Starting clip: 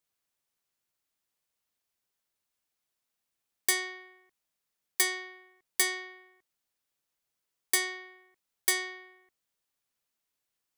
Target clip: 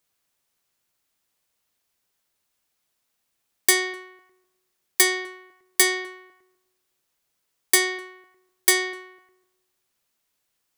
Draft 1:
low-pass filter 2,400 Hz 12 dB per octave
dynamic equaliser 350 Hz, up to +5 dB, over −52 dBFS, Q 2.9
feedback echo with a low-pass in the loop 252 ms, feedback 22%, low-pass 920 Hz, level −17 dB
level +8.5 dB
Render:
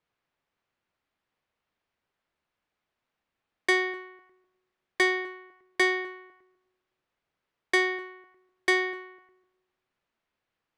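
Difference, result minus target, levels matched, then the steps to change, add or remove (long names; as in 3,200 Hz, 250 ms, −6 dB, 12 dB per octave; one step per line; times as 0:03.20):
2,000 Hz band +4.0 dB
remove: low-pass filter 2,400 Hz 12 dB per octave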